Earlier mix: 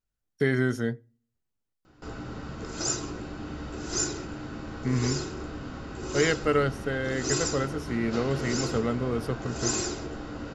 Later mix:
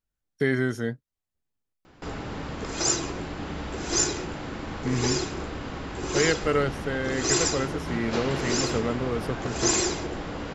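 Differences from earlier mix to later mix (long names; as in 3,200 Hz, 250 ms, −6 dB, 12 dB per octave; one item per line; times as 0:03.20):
background +5.0 dB
reverb: off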